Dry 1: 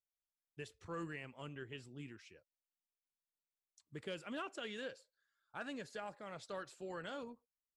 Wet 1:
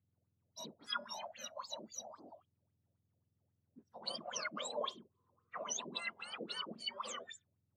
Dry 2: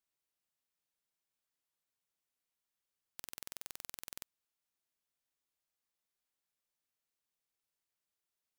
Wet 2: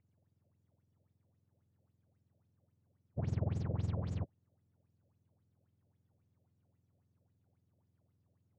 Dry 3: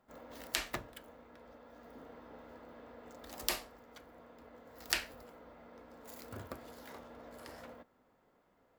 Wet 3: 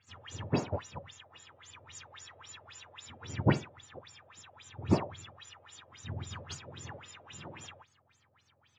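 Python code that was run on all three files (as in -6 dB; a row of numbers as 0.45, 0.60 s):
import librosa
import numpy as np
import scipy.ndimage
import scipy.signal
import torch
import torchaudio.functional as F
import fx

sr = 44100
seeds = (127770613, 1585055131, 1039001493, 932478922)

y = fx.octave_mirror(x, sr, pivot_hz=1300.0)
y = fx.filter_lfo_lowpass(y, sr, shape='sine', hz=3.7, low_hz=550.0, high_hz=7400.0, q=8.0)
y = F.gain(torch.from_numpy(y), 1.0).numpy()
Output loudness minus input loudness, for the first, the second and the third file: +4.0, +10.0, +5.5 LU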